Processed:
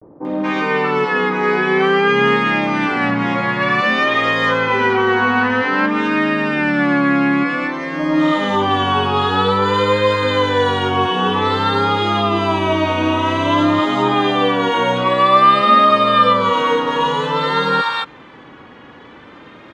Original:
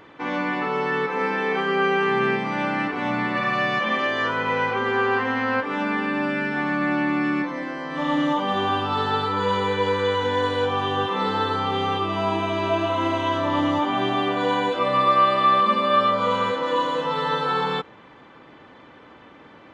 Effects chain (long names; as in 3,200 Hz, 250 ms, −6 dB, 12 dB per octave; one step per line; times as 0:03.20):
multiband delay without the direct sound lows, highs 240 ms, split 730 Hz
pitch vibrato 0.52 Hz 85 cents
level +8 dB